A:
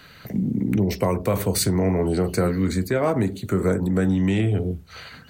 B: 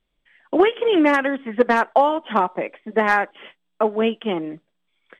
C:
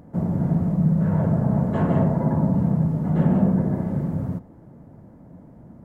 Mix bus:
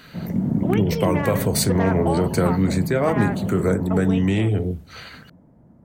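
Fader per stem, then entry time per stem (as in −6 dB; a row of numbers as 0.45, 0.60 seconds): +1.0, −10.5, −6.5 decibels; 0.00, 0.10, 0.00 seconds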